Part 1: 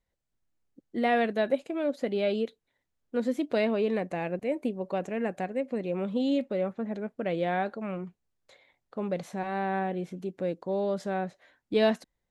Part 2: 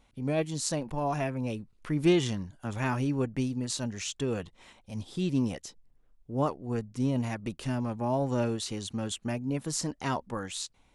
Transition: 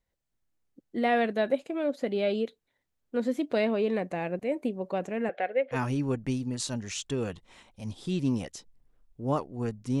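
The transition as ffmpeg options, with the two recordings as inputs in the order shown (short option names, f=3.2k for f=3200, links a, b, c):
-filter_complex "[0:a]asettb=1/sr,asplit=3[a][b][c];[a]atrim=end=5.294[d];[b]atrim=start=5.29:end=5.77,asetpts=PTS-STARTPTS,afade=t=in:d=0.004:c=qsin,afade=t=out:st=0.476:d=0.004:c=qsin,highpass=470,equalizer=f=480:t=q:w=4:g=10,equalizer=f=690:t=q:w=4:g=6,equalizer=f=1k:t=q:w=4:g=-8,equalizer=f=1.5k:t=q:w=4:g=6,equalizer=f=2.1k:t=q:w=4:g=8,equalizer=f=3.2k:t=q:w=4:g=8,lowpass=f=3.8k:w=0.5412,lowpass=f=3.8k:w=1.3066[e];[c]atrim=start=5.766[f];[d][e]acrossfade=d=0.004:c1=hsin:c2=qsin[g];[g][f]acrossfade=d=0.004:c1=qsin:c2=hsin,apad=whole_dur=10,atrim=end=10,atrim=end=5.77,asetpts=PTS-STARTPTS[h];[1:a]atrim=start=2.81:end=7.1,asetpts=PTS-STARTPTS[i];[h][i]acrossfade=d=0.06:c1=tri:c2=tri"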